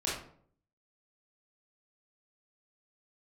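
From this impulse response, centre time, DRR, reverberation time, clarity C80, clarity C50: 49 ms, −7.0 dB, 0.55 s, 7.5 dB, 2.0 dB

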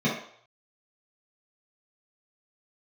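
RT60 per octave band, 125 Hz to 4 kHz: 0.35, 0.40, 0.60, 0.65, 0.50, 0.60 seconds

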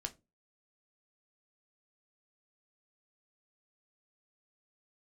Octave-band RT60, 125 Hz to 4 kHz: 0.40, 0.35, 0.30, 0.20, 0.20, 0.15 seconds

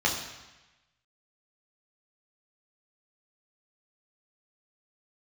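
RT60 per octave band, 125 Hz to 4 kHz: 1.2, 1.0, 1.0, 1.1, 1.2, 1.1 seconds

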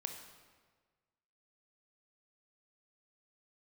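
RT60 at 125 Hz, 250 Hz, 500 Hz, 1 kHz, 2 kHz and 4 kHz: 1.7, 1.5, 1.5, 1.4, 1.3, 1.1 seconds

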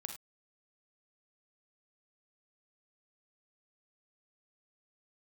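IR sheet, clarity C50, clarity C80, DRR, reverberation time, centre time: 7.0 dB, 12.0 dB, 4.5 dB, non-exponential decay, 17 ms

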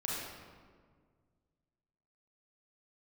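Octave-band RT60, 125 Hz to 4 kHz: 2.5, 2.2, 1.9, 1.6, 1.3, 1.0 seconds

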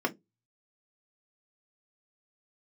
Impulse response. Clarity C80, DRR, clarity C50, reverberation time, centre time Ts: 34.0 dB, 0.0 dB, 22.5 dB, 0.20 s, 5 ms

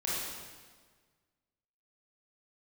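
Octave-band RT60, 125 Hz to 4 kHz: 1.8, 1.6, 1.6, 1.5, 1.4, 1.3 seconds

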